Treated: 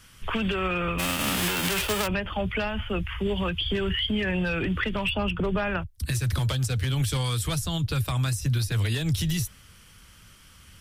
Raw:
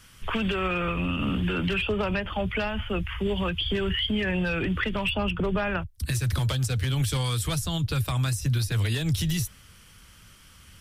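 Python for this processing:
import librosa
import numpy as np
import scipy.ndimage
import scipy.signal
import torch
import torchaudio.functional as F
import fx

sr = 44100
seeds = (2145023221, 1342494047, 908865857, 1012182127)

y = fx.envelope_flatten(x, sr, power=0.3, at=(0.98, 2.06), fade=0.02)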